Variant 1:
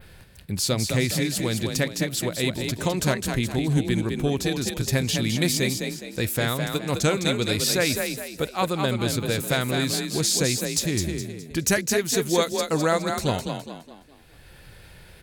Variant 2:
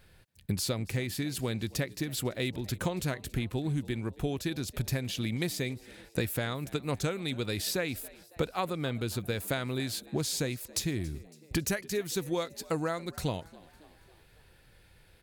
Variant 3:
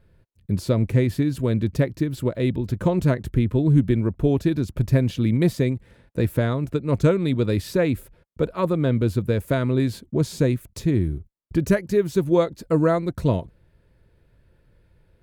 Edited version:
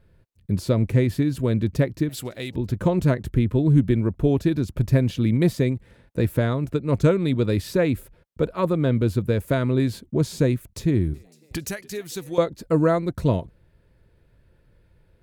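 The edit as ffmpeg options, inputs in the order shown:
-filter_complex "[1:a]asplit=2[a][b];[2:a]asplit=3[c][d][e];[c]atrim=end=2.092[f];[a]atrim=start=2.088:end=2.552[g];[d]atrim=start=2.548:end=11.142[h];[b]atrim=start=11.138:end=12.382[i];[e]atrim=start=12.378[j];[f][g]acrossfade=d=0.004:c1=hsin:c2=hsin[k];[k][h]acrossfade=d=0.004:c1=hsin:c2=hsin[l];[l][i]acrossfade=d=0.004:c1=hsin:c2=hsin[m];[m][j]acrossfade=d=0.004:c1=hsin:c2=hsin"

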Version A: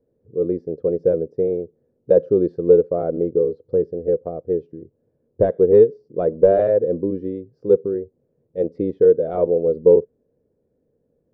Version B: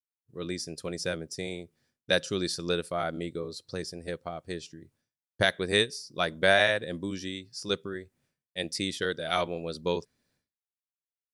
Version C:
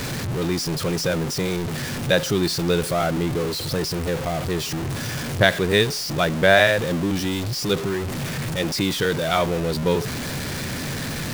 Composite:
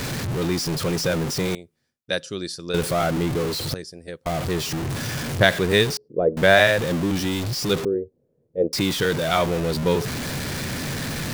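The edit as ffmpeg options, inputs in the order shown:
-filter_complex "[1:a]asplit=2[a][b];[0:a]asplit=2[c][d];[2:a]asplit=5[e][f][g][h][i];[e]atrim=end=1.552[j];[a]atrim=start=1.548:end=2.742[k];[f]atrim=start=2.738:end=3.742[l];[b]atrim=start=3.738:end=4.262[m];[g]atrim=start=4.258:end=5.972[n];[c]atrim=start=5.968:end=6.372[o];[h]atrim=start=6.368:end=7.852[p];[d]atrim=start=7.848:end=8.732[q];[i]atrim=start=8.728[r];[j][k]acrossfade=d=0.004:c1=hsin:c2=hsin[s];[s][l]acrossfade=d=0.004:c1=hsin:c2=hsin[t];[t][m]acrossfade=d=0.004:c1=hsin:c2=hsin[u];[u][n]acrossfade=d=0.004:c1=hsin:c2=hsin[v];[v][o]acrossfade=d=0.004:c1=hsin:c2=hsin[w];[w][p]acrossfade=d=0.004:c1=hsin:c2=hsin[x];[x][q]acrossfade=d=0.004:c1=hsin:c2=hsin[y];[y][r]acrossfade=d=0.004:c1=hsin:c2=hsin"

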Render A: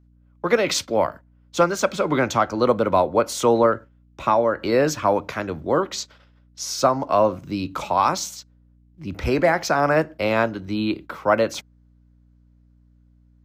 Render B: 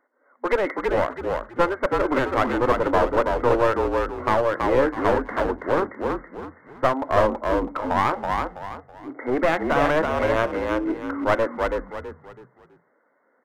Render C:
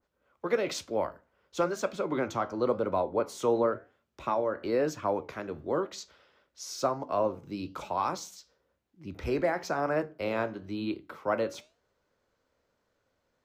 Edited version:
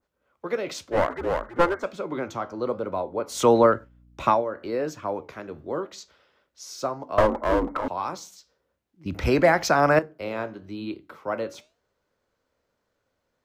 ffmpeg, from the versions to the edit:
-filter_complex "[1:a]asplit=2[a][b];[0:a]asplit=2[c][d];[2:a]asplit=5[e][f][g][h][i];[e]atrim=end=0.97[j];[a]atrim=start=0.91:end=1.85[k];[f]atrim=start=1.79:end=3.43[l];[c]atrim=start=3.27:end=4.45[m];[g]atrim=start=4.29:end=7.182[n];[b]atrim=start=7.178:end=7.882[o];[h]atrim=start=7.878:end=9.062[p];[d]atrim=start=9.058:end=9.992[q];[i]atrim=start=9.988[r];[j][k]acrossfade=d=0.06:c1=tri:c2=tri[s];[s][l]acrossfade=d=0.06:c1=tri:c2=tri[t];[t][m]acrossfade=d=0.16:c1=tri:c2=tri[u];[u][n]acrossfade=d=0.16:c1=tri:c2=tri[v];[v][o]acrossfade=d=0.004:c1=hsin:c2=hsin[w];[w][p]acrossfade=d=0.004:c1=hsin:c2=hsin[x];[x][q]acrossfade=d=0.004:c1=hsin:c2=hsin[y];[y][r]acrossfade=d=0.004:c1=hsin:c2=hsin"

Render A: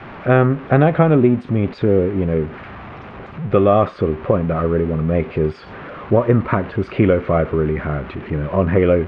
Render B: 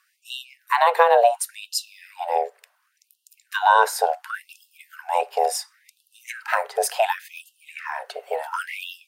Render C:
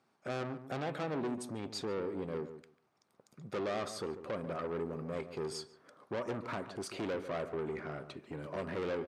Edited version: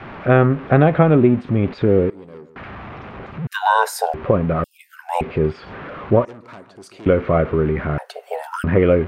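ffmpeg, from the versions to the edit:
-filter_complex "[2:a]asplit=2[a][b];[1:a]asplit=3[c][d][e];[0:a]asplit=6[f][g][h][i][j][k];[f]atrim=end=2.102[l];[a]atrim=start=2.098:end=2.562[m];[g]atrim=start=2.558:end=3.472[n];[c]atrim=start=3.468:end=4.142[o];[h]atrim=start=4.138:end=4.642[p];[d]atrim=start=4.638:end=5.212[q];[i]atrim=start=5.208:end=6.252[r];[b]atrim=start=6.248:end=7.062[s];[j]atrim=start=7.058:end=7.982[t];[e]atrim=start=7.978:end=8.642[u];[k]atrim=start=8.638[v];[l][m]acrossfade=d=0.004:c1=hsin:c2=hsin[w];[w][n]acrossfade=d=0.004:c1=hsin:c2=hsin[x];[x][o]acrossfade=d=0.004:c1=hsin:c2=hsin[y];[y][p]acrossfade=d=0.004:c1=hsin:c2=hsin[z];[z][q]acrossfade=d=0.004:c1=hsin:c2=hsin[aa];[aa][r]acrossfade=d=0.004:c1=hsin:c2=hsin[ab];[ab][s]acrossfade=d=0.004:c1=hsin:c2=hsin[ac];[ac][t]acrossfade=d=0.004:c1=hsin:c2=hsin[ad];[ad][u]acrossfade=d=0.004:c1=hsin:c2=hsin[ae];[ae][v]acrossfade=d=0.004:c1=hsin:c2=hsin"

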